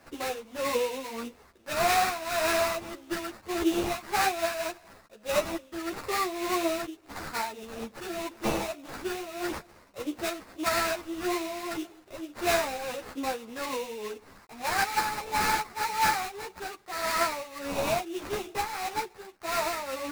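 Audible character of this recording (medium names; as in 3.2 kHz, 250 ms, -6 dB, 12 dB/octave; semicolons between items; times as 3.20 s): a quantiser's noise floor 10-bit, dither none; tremolo triangle 1.7 Hz, depth 70%; aliases and images of a low sample rate 3.2 kHz, jitter 20%; a shimmering, thickened sound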